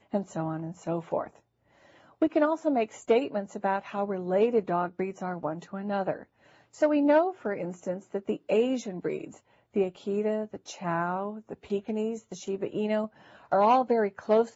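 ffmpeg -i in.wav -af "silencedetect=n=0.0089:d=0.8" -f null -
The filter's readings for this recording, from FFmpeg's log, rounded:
silence_start: 1.27
silence_end: 2.22 | silence_duration: 0.94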